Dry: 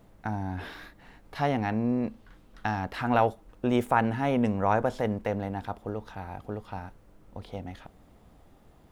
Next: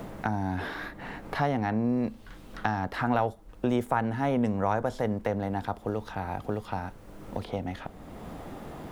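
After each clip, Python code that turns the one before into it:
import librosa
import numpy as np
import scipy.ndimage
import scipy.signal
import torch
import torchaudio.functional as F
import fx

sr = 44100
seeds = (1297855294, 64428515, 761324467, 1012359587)

y = fx.dynamic_eq(x, sr, hz=2600.0, q=3.1, threshold_db=-54.0, ratio=4.0, max_db=-5)
y = fx.band_squash(y, sr, depth_pct=70)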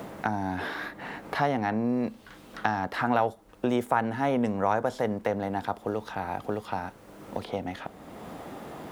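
y = fx.highpass(x, sr, hz=230.0, slope=6)
y = F.gain(torch.from_numpy(y), 2.5).numpy()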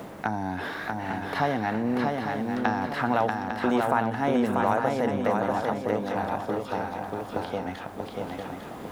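y = fx.echo_swing(x, sr, ms=851, ratio=3, feedback_pct=39, wet_db=-3.5)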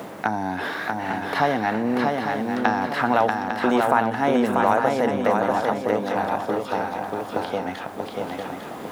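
y = fx.highpass(x, sr, hz=210.0, slope=6)
y = F.gain(torch.from_numpy(y), 5.5).numpy()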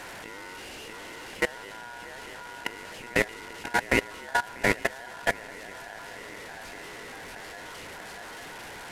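y = fx.delta_mod(x, sr, bps=64000, step_db=-19.5)
y = y * np.sin(2.0 * np.pi * 1200.0 * np.arange(len(y)) / sr)
y = fx.level_steps(y, sr, step_db=21)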